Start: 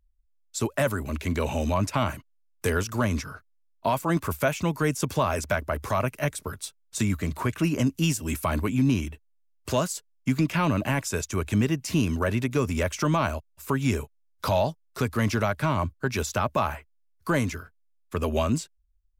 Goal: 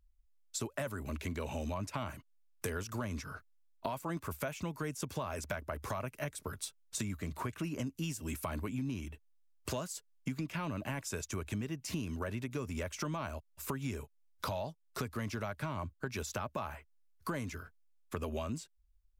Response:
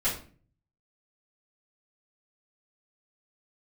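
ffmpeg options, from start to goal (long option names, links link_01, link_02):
-af "acompressor=threshold=-36dB:ratio=4,volume=-1dB"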